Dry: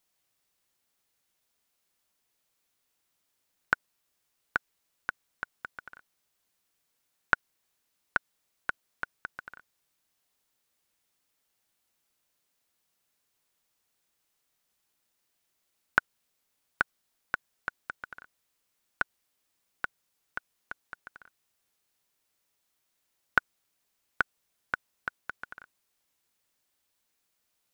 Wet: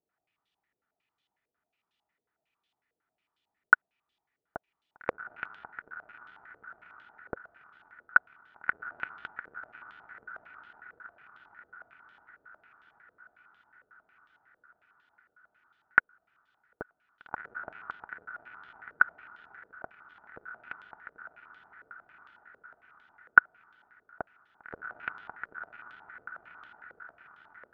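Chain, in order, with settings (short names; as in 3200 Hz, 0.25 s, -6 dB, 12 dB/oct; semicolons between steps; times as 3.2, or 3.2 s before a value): notch comb 540 Hz; diffused feedback echo 1.667 s, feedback 51%, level -12.5 dB; stepped low-pass 11 Hz 510–3300 Hz; gain -3 dB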